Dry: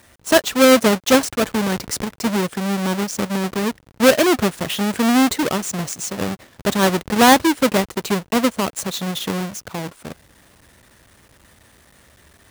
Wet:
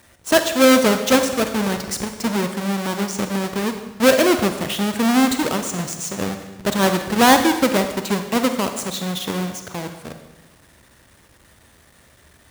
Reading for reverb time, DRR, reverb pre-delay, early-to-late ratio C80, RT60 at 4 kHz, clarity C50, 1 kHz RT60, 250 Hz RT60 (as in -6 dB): 1.1 s, 7.0 dB, 35 ms, 9.5 dB, 1.0 s, 8.0 dB, 1.1 s, 1.2 s